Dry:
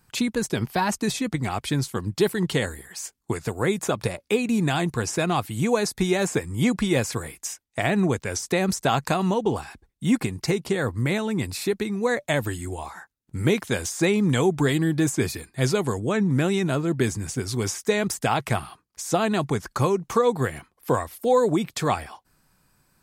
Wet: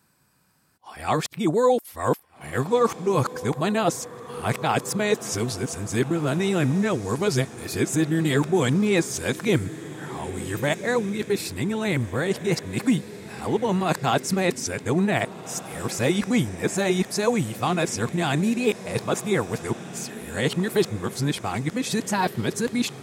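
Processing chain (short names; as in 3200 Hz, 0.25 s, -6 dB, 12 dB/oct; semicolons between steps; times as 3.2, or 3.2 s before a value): whole clip reversed; HPF 90 Hz; on a send: diffused feedback echo 1.69 s, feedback 46%, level -14.5 dB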